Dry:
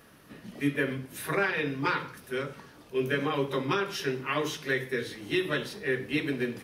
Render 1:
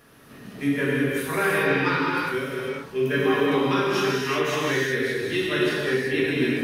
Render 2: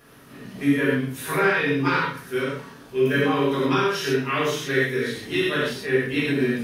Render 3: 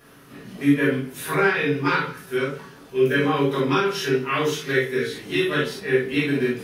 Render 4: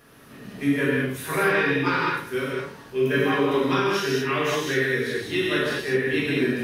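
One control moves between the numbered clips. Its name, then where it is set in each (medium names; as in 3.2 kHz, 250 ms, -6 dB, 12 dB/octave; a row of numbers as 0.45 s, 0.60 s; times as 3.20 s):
gated-style reverb, gate: 410 ms, 150 ms, 90 ms, 250 ms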